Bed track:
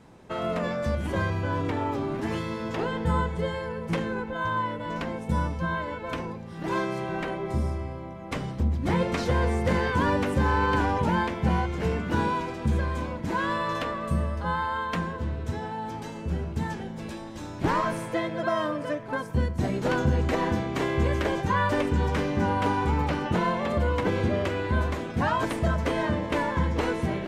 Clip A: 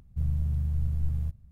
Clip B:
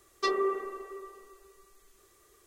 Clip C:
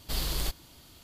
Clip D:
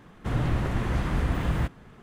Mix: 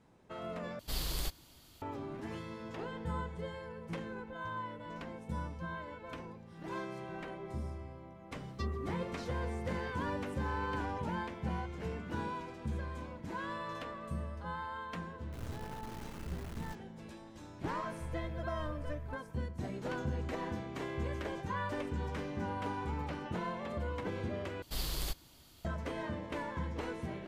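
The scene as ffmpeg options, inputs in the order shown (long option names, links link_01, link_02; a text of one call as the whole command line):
ffmpeg -i bed.wav -i cue0.wav -i cue1.wav -i cue2.wav -i cue3.wav -filter_complex "[3:a]asplit=2[link_01][link_02];[0:a]volume=-13dB[link_03];[4:a]acrusher=bits=3:dc=4:mix=0:aa=0.000001[link_04];[link_03]asplit=3[link_05][link_06][link_07];[link_05]atrim=end=0.794[link_08];[link_01]atrim=end=1.03,asetpts=PTS-STARTPTS,volume=-5.5dB[link_09];[link_06]atrim=start=1.816:end=24.624[link_10];[link_02]atrim=end=1.03,asetpts=PTS-STARTPTS,volume=-6dB[link_11];[link_07]atrim=start=25.646[link_12];[2:a]atrim=end=2.46,asetpts=PTS-STARTPTS,volume=-15.5dB,afade=type=in:duration=0.004:curve=hsin,afade=type=out:start_time=2.456:duration=0.004:curve=hsin,adelay=8360[link_13];[link_04]atrim=end=2.02,asetpts=PTS-STARTPTS,volume=-17dB,afade=type=in:duration=0.004:curve=hsin,afade=type=out:start_time=2.016:duration=0.004:curve=hsin,adelay=15070[link_14];[1:a]atrim=end=1.51,asetpts=PTS-STARTPTS,volume=-14.5dB,afade=type=in:duration=0.004:curve=hsin,afade=type=out:start_time=1.506:duration=0.004:curve=hsin,adelay=17840[link_15];[link_08][link_09]acrossfade=duration=0.004:curve1=hsin:curve2=hsin[link_16];[link_16][link_10]acrossfade=duration=0.004:curve1=hsin:curve2=hsin[link_17];[link_17][link_11]acrossfade=duration=0.004:curve1=hsin:curve2=hsin[link_18];[link_18][link_12]acrossfade=duration=0.004:curve1=hsin:curve2=hsin[link_19];[link_19][link_13][link_14][link_15]amix=inputs=4:normalize=0" out.wav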